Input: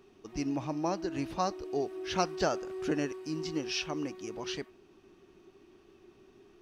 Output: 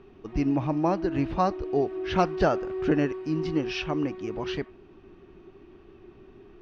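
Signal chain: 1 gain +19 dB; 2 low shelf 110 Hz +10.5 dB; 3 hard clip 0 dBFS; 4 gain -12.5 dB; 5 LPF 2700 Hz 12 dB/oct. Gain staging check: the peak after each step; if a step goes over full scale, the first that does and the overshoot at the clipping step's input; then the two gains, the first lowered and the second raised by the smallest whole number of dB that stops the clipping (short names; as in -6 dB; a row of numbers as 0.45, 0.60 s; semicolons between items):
+4.0, +4.5, 0.0, -12.5, -12.5 dBFS; step 1, 4.5 dB; step 1 +14 dB, step 4 -7.5 dB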